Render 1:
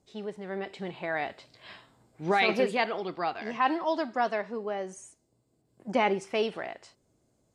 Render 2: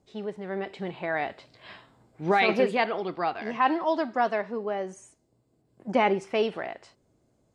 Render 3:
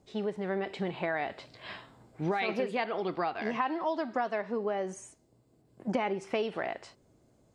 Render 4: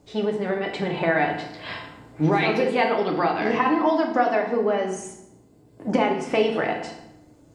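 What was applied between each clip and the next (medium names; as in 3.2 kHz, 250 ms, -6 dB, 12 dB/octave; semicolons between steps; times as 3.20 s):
treble shelf 4.5 kHz -8.5 dB; trim +3 dB
compression 6:1, threshold -31 dBFS, peak gain reduction 13 dB; trim +3 dB
FDN reverb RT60 0.85 s, low-frequency decay 1.55×, high-frequency decay 0.75×, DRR 1 dB; trim +7.5 dB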